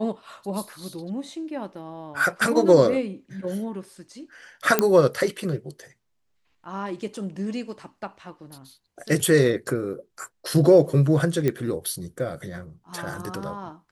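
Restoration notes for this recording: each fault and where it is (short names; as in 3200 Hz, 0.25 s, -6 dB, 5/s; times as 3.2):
4.79 pop -3 dBFS
11.48 pop -11 dBFS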